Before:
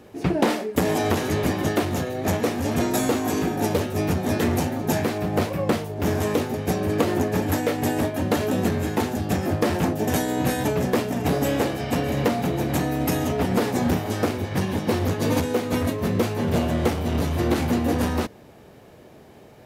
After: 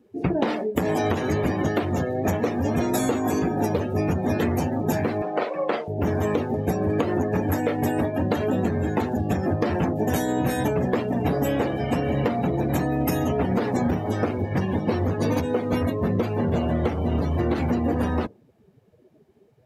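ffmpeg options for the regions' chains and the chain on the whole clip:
ffmpeg -i in.wav -filter_complex "[0:a]asettb=1/sr,asplit=3[link_01][link_02][link_03];[link_01]atrim=end=5.224[link_04];[link_02]atrim=start=5.22:end=5.88,asetpts=PTS-STARTPTS,afade=type=in:duration=0.004:curve=qsin,afade=type=out:start_time=0.656:duration=0.004:curve=qsin,highpass=470,lowpass=6600,asplit=2[link_05][link_06];[link_06]adelay=45,volume=-7dB[link_07];[link_05][link_07]amix=inputs=2:normalize=0,atrim=end_sample=29106[link_08];[link_03]atrim=start=5.876[link_09];[link_04][link_08]acrossfade=duration=0.004:curve1=hsin:curve2=qsin[link_10];[link_10][link_09]acrossfade=duration=0.004:curve1=qsin:curve2=hsin,afftdn=noise_reduction=22:noise_floor=-34,acompressor=threshold=-22dB:ratio=6,volume=3dB" out.wav

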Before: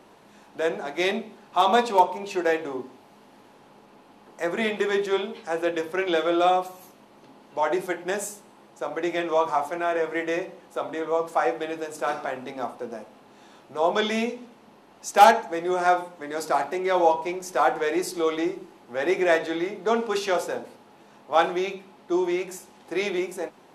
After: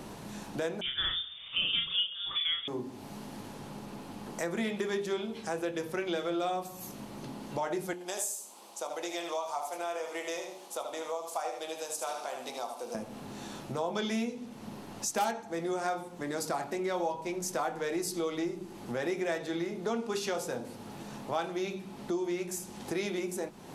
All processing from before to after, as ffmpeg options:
ffmpeg -i in.wav -filter_complex "[0:a]asettb=1/sr,asplit=3[link_01][link_02][link_03];[link_01]atrim=end=0.814[link_04];[link_02]atrim=start=0.81:end=2.68,asetpts=PTS-STARTPTS,afade=type=in:duration=0.004:curve=qsin,afade=type=out:start_time=1.866:duration=0.004:curve=qsin,lowpass=frequency=3200:width_type=q:width=0.5098,lowpass=frequency=3200:width_type=q:width=0.6013,lowpass=frequency=3200:width_type=q:width=0.9,lowpass=frequency=3200:width_type=q:width=2.563,afreqshift=-3800,asplit=2[link_05][link_06];[link_06]adelay=35,volume=-4.5dB[link_07];[link_05][link_07]amix=inputs=2:normalize=0,atrim=end_sample=82467[link_08];[link_03]atrim=start=2.676[link_09];[link_04][link_08]acrossfade=duration=0.004:curve1=hsin:curve2=qsin[link_10];[link_10][link_09]acrossfade=duration=0.004:curve1=qsin:curve2=hsin,asettb=1/sr,asplit=3[link_11][link_12][link_13];[link_11]atrim=end=7.934[link_14];[link_12]atrim=start=7.93:end=12.95,asetpts=PTS-STARTPTS,afade=type=in:duration=0.004:curve=qsin,afade=type=out:start_time=5.016:duration=0.004:curve=qsin,highpass=770,equalizer=frequency=1700:width_type=o:width=0.97:gain=-12,aecho=1:1:76|152|228:0.447|0.103|0.0236,atrim=end_sample=221382[link_15];[link_13]atrim=start=12.946[link_16];[link_14][link_15]acrossfade=duration=0.004:curve1=hsin:curve2=qsin[link_17];[link_17][link_16]acrossfade=duration=0.004:curve1=qsin:curve2=hsin,bass=frequency=250:gain=13,treble=frequency=4000:gain=8,bandreject=frequency=89.42:width_type=h:width=4,bandreject=frequency=178.84:width_type=h:width=4,bandreject=frequency=268.26:width_type=h:width=4,bandreject=frequency=357.68:width_type=h:width=4,bandreject=frequency=447.1:width_type=h:width=4,acompressor=threshold=-41dB:ratio=3,volume=5dB" out.wav

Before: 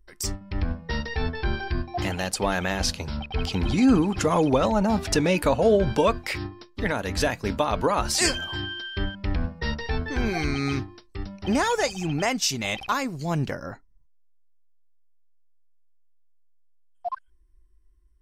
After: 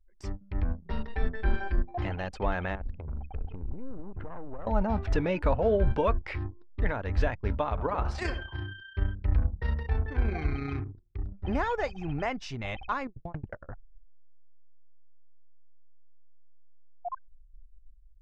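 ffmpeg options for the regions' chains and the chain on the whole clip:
ffmpeg -i in.wav -filter_complex "[0:a]asettb=1/sr,asplit=3[link_01][link_02][link_03];[link_01]atrim=end=0.854[link_04];[link_02]atrim=start=0.85:end=1.95,asetpts=PTS-STARTPTS,afade=type=in:duration=0.004:curve=qsin,afade=type=out:start_time=1.096:duration=0.004:curve=qsin,aecho=1:1:5.1:0.79,atrim=end_sample=48510,tremolo=f=210:d=0.519[link_05];[link_03]atrim=start=1.946[link_06];[link_04][link_05]acrossfade=duration=0.004:curve1=hsin:curve2=qsin[link_07];[link_07][link_06]acrossfade=duration=0.004:curve1=qsin:curve2=hsin,asettb=1/sr,asplit=3[link_08][link_09][link_10];[link_08]atrim=end=2.754[link_11];[link_09]atrim=start=2.75:end=4.67,asetpts=PTS-STARTPTS,afade=type=in:duration=0.004:curve=qsin,afade=type=out:start_time=1.916:duration=0.004:curve=qsin,lowpass=1800,aeval=exprs='clip(val(0),-1,0.0211)':channel_layout=same,acompressor=threshold=-31dB:ratio=6:attack=3.2:release=140:knee=1:detection=peak[link_12];[link_10]atrim=start=4.666[link_13];[link_11][link_12]acrossfade=duration=0.004:curve1=hsin:curve2=qsin[link_14];[link_14][link_13]acrossfade=duration=0.004:curve1=qsin:curve2=hsin,asettb=1/sr,asplit=3[link_15][link_16][link_17];[link_15]atrim=end=7.694[link_18];[link_16]atrim=start=7.69:end=11.33,asetpts=PTS-STARTPTS,afade=type=in:duration=0.004:curve=qsin,afade=type=out:start_time=3.636:duration=0.004:curve=qsin,tremolo=f=30:d=0.462,highpass=46,asplit=2[link_19][link_20];[link_20]adelay=82,lowpass=frequency=1700:poles=1,volume=-9dB,asplit=2[link_21][link_22];[link_22]adelay=82,lowpass=frequency=1700:poles=1,volume=0.37,asplit=2[link_23][link_24];[link_24]adelay=82,lowpass=frequency=1700:poles=1,volume=0.37,asplit=2[link_25][link_26];[link_26]adelay=82,lowpass=frequency=1700:poles=1,volume=0.37[link_27];[link_19][link_21][link_23][link_25][link_27]amix=inputs=5:normalize=0,atrim=end_sample=160524[link_28];[link_17]atrim=start=11.326[link_29];[link_18][link_28]acrossfade=duration=0.004:curve1=hsin:curve2=qsin[link_30];[link_30][link_29]acrossfade=duration=0.004:curve1=qsin:curve2=hsin,asettb=1/sr,asplit=3[link_31][link_32][link_33];[link_31]atrim=end=13.074[link_34];[link_32]atrim=start=13.07:end=13.69,asetpts=PTS-STARTPTS,afade=type=in:duration=0.004:curve=qsin,afade=type=out:start_time=0.616:duration=0.004:curve=qsin,adynamicequalizer=threshold=0.00708:dfrequency=970:dqfactor=1:tfrequency=970:tqfactor=1:attack=5:release=100:ratio=0.375:range=2.5:mode=boostabove:tftype=bell,acrusher=bits=6:mode=log:mix=0:aa=0.000001,aeval=exprs='val(0)*pow(10,-25*if(lt(mod(11*n/s,1),2*abs(11)/1000),1-mod(11*n/s,1)/(2*abs(11)/1000),(mod(11*n/s,1)-2*abs(11)/1000)/(1-2*abs(11)/1000))/20)':channel_layout=same[link_35];[link_33]atrim=start=13.686[link_36];[link_34][link_35]acrossfade=duration=0.004:curve1=hsin:curve2=qsin[link_37];[link_37][link_36]acrossfade=duration=0.004:curve1=qsin:curve2=hsin,anlmdn=2.51,lowpass=2100,asubboost=boost=5.5:cutoff=78,volume=-5dB" out.wav

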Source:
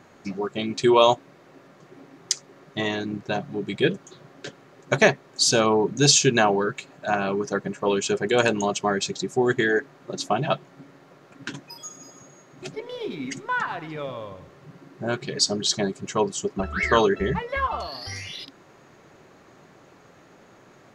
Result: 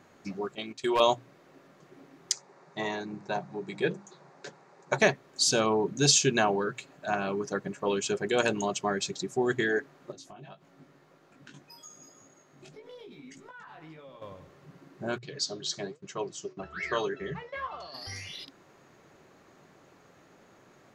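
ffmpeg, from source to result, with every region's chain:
ffmpeg -i in.wav -filter_complex "[0:a]asettb=1/sr,asplit=3[link_01][link_02][link_03];[link_01]atrim=end=0.554[link_04];[link_02]atrim=start=0.55:end=1,asetpts=PTS-STARTPTS,afade=type=in:duration=0.004:curve=qsin,afade=type=out:start_time=0.446:duration=0.004:curve=qsin,agate=range=-9dB:threshold=-29dB:ratio=16:release=100:detection=peak,lowshelf=frequency=290:gain=-11.5,asoftclip=type=hard:threshold=-13.5dB[link_05];[link_03]atrim=start=0.996[link_06];[link_04][link_05]acrossfade=duration=0.004:curve1=hsin:curve2=qsin[link_07];[link_07][link_06]acrossfade=duration=0.004:curve1=qsin:curve2=hsin,asettb=1/sr,asplit=3[link_08][link_09][link_10];[link_08]atrim=end=2.324[link_11];[link_09]atrim=start=2.32:end=5,asetpts=PTS-STARTPTS,afade=type=in:duration=0.004:curve=qsin,afade=type=out:start_time=2.676:duration=0.004:curve=qsin,highpass=150,equalizer=frequency=160:width_type=q:width=4:gain=3,equalizer=frequency=270:width_type=q:width=4:gain=-8,equalizer=frequency=880:width_type=q:width=4:gain=9,equalizer=frequency=3100:width_type=q:width=4:gain=-9,lowpass=frequency=8400:width=0.5412,lowpass=frequency=8400:width=1.3066,bandreject=frequency=50:width_type=h:width=6,bandreject=frequency=100:width_type=h:width=6,bandreject=frequency=150:width_type=h:width=6,bandreject=frequency=200:width_type=h:width=6,bandreject=frequency=250:width_type=h:width=6,bandreject=frequency=300:width_type=h:width=6,bandreject=frequency=350:width_type=h:width=6[link_12];[link_10]atrim=start=4.996[link_13];[link_11][link_12]acrossfade=duration=0.004:curve1=hsin:curve2=qsin[link_14];[link_14][link_13]acrossfade=duration=0.004:curve1=qsin:curve2=hsin,asettb=1/sr,asplit=3[link_15][link_16][link_17];[link_15]atrim=end=10.124[link_18];[link_16]atrim=start=10.12:end=14.22,asetpts=PTS-STARTPTS,afade=type=in:duration=0.004:curve=qsin,afade=type=out:start_time=4.096:duration=0.004:curve=qsin,acompressor=threshold=-36dB:ratio=8:attack=3.2:release=140:knee=1:detection=peak,flanger=delay=18:depth=2.7:speed=1.8[link_19];[link_17]atrim=start=14.216[link_20];[link_18][link_19]acrossfade=duration=0.004:curve1=hsin:curve2=qsin[link_21];[link_21][link_20]acrossfade=duration=0.004:curve1=qsin:curve2=hsin,asettb=1/sr,asplit=3[link_22][link_23][link_24];[link_22]atrim=end=15.184[link_25];[link_23]atrim=start=15.18:end=17.94,asetpts=PTS-STARTPTS,afade=type=in:duration=0.004:curve=qsin,afade=type=out:start_time=2.756:duration=0.004:curve=qsin,agate=range=-17dB:threshold=-40dB:ratio=16:release=100:detection=peak,flanger=delay=5:depth=8.5:regen=75:speed=1.1:shape=sinusoidal,highpass=130,equalizer=frequency=150:width_type=q:width=4:gain=5,equalizer=frequency=220:width_type=q:width=4:gain=-10,equalizer=frequency=870:width_type=q:width=4:gain=-4,lowpass=frequency=7100:width=0.5412,lowpass=frequency=7100:width=1.3066[link_26];[link_24]atrim=start=17.936[link_27];[link_25][link_26]acrossfade=duration=0.004:curve1=hsin:curve2=qsin[link_28];[link_28][link_27]acrossfade=duration=0.004:curve1=qsin:curve2=hsin,highshelf=frequency=8500:gain=4,bandreject=frequency=60:width_type=h:width=6,bandreject=frequency=120:width_type=h:width=6,volume=-6dB" out.wav

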